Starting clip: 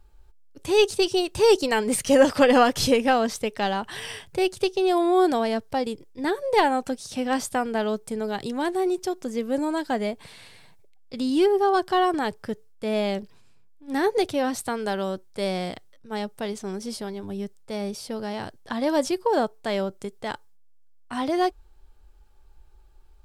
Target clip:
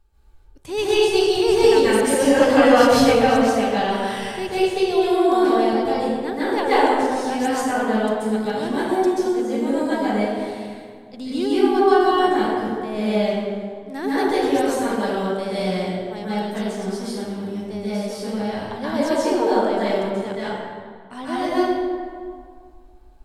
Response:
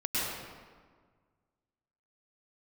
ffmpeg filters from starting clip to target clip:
-filter_complex "[1:a]atrim=start_sample=2205,asetrate=34398,aresample=44100[link_01];[0:a][link_01]afir=irnorm=-1:irlink=0,volume=-6dB"

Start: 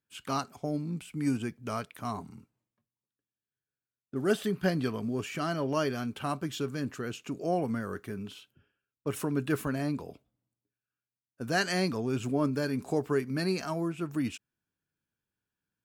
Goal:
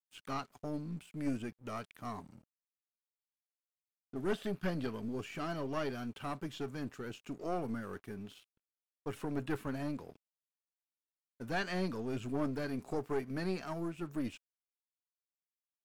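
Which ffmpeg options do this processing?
ffmpeg -i in.wav -filter_complex "[0:a]aeval=exprs='(tanh(15.8*val(0)+0.6)-tanh(0.6))/15.8':channel_layout=same,aeval=exprs='sgn(val(0))*max(abs(val(0))-0.00119,0)':channel_layout=same,acrossover=split=4300[link_01][link_02];[link_02]acompressor=threshold=-54dB:ratio=4:attack=1:release=60[link_03];[link_01][link_03]amix=inputs=2:normalize=0,volume=-2.5dB" out.wav

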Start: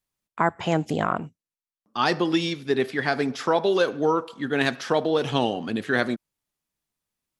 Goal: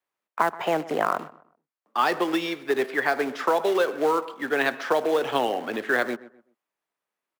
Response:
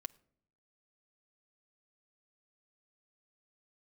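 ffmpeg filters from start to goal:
-filter_complex "[0:a]highpass=frequency=110:poles=1,acrusher=bits=3:mode=log:mix=0:aa=0.000001,acrossover=split=250|3000[link_01][link_02][link_03];[link_02]acompressor=threshold=-23dB:ratio=6[link_04];[link_01][link_04][link_03]amix=inputs=3:normalize=0,acrossover=split=350 2400:gain=0.1 1 0.2[link_05][link_06][link_07];[link_05][link_06][link_07]amix=inputs=3:normalize=0,asplit=2[link_08][link_09];[link_09]adelay=127,lowpass=frequency=1900:poles=1,volume=-17dB,asplit=2[link_10][link_11];[link_11]adelay=127,lowpass=frequency=1900:poles=1,volume=0.32,asplit=2[link_12][link_13];[link_13]adelay=127,lowpass=frequency=1900:poles=1,volume=0.32[link_14];[link_08][link_10][link_12][link_14]amix=inputs=4:normalize=0,volume=5.5dB"

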